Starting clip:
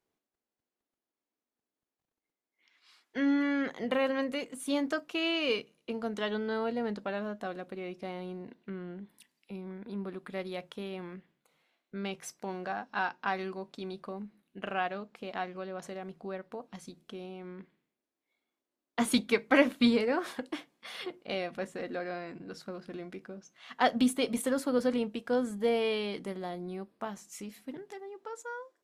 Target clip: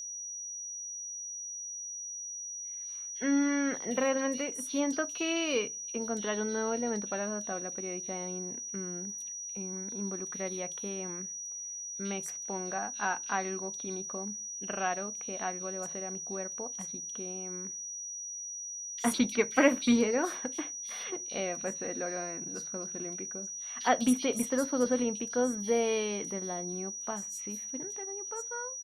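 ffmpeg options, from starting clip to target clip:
-filter_complex "[0:a]acrossover=split=3600[a][b];[a]adelay=60[c];[c][b]amix=inputs=2:normalize=0,aeval=exprs='val(0)+0.0126*sin(2*PI*5800*n/s)':c=same"

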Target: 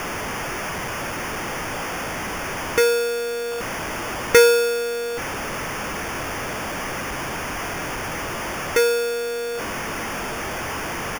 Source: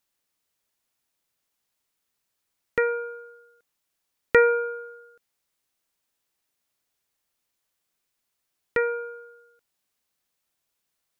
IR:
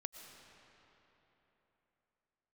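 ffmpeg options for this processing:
-filter_complex "[0:a]aeval=exprs='val(0)+0.5*0.0562*sgn(val(0))':c=same,acrusher=samples=11:mix=1:aa=0.000001,asplit=2[a][b];[b]adelay=23,volume=-13.5dB[c];[a][c]amix=inputs=2:normalize=0,volume=3dB"

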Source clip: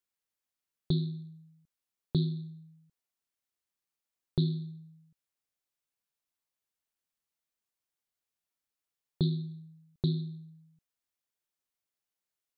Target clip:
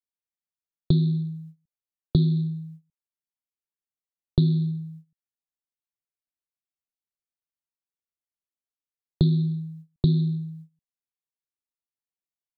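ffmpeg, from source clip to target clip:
-filter_complex "[0:a]lowshelf=f=480:g=8,acrossover=split=270|2300[a][b][c];[a]acompressor=threshold=-27dB:ratio=4[d];[b]acompressor=threshold=-42dB:ratio=4[e];[c]acompressor=threshold=-48dB:ratio=4[f];[d][e][f]amix=inputs=3:normalize=0,agate=range=-23dB:threshold=-51dB:ratio=16:detection=peak,volume=8.5dB"

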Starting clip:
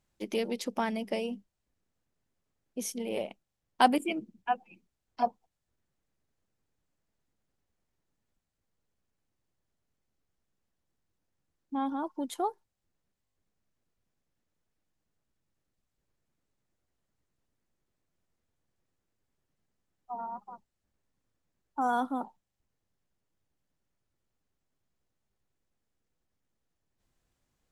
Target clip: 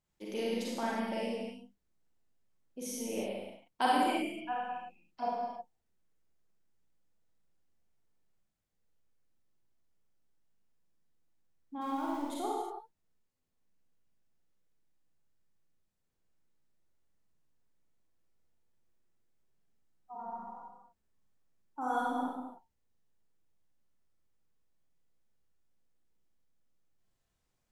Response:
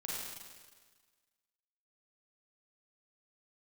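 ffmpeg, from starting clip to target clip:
-filter_complex "[0:a]asettb=1/sr,asplit=3[a][b][c];[a]atrim=end=11.814[d];[b]atrim=start=11.81:end=12.22,asetpts=PTS-STARTPTS,afade=t=in:d=0.004:c=qsin,afade=t=out:st=0.406:d=0.004:c=qsin,aeval=exprs='val(0)+0.5*0.0075*sgn(val(0))':c=same[e];[c]atrim=start=12.216[f];[d][e]acrossfade=d=0.004:c1=hsin:c2=qsin[g];[g][f]acrossfade=d=0.004:c1=qsin:c2=hsin[h];[1:a]atrim=start_sample=2205,afade=t=out:st=0.41:d=0.01,atrim=end_sample=18522[i];[h][i]afir=irnorm=-1:irlink=0,volume=-3.5dB"

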